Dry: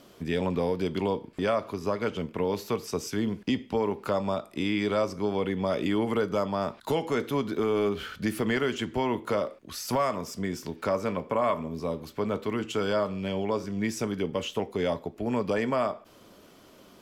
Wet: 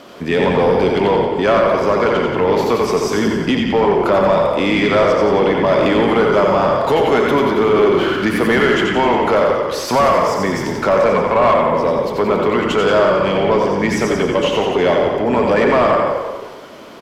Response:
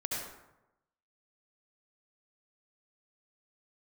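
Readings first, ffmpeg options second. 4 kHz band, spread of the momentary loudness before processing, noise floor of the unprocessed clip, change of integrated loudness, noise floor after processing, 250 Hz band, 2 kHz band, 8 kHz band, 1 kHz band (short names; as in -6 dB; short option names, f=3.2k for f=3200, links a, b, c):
+13.5 dB, 5 LU, -54 dBFS, +14.5 dB, -27 dBFS, +12.0 dB, +16.5 dB, +9.5 dB, +16.5 dB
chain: -filter_complex "[0:a]asplit=9[a][b][c][d][e][f][g][h][i];[b]adelay=89,afreqshift=-33,volume=-5dB[j];[c]adelay=178,afreqshift=-66,volume=-9.4dB[k];[d]adelay=267,afreqshift=-99,volume=-13.9dB[l];[e]adelay=356,afreqshift=-132,volume=-18.3dB[m];[f]adelay=445,afreqshift=-165,volume=-22.7dB[n];[g]adelay=534,afreqshift=-198,volume=-27.2dB[o];[h]adelay=623,afreqshift=-231,volume=-31.6dB[p];[i]adelay=712,afreqshift=-264,volume=-36.1dB[q];[a][j][k][l][m][n][o][p][q]amix=inputs=9:normalize=0,asplit=2[r][s];[1:a]atrim=start_sample=2205,asetrate=42777,aresample=44100[t];[s][t]afir=irnorm=-1:irlink=0,volume=-5dB[u];[r][u]amix=inputs=2:normalize=0,asplit=2[v][w];[w]highpass=f=720:p=1,volume=16dB,asoftclip=type=tanh:threshold=-9.5dB[x];[v][x]amix=inputs=2:normalize=0,lowpass=f=1.8k:p=1,volume=-6dB,volume=5.5dB"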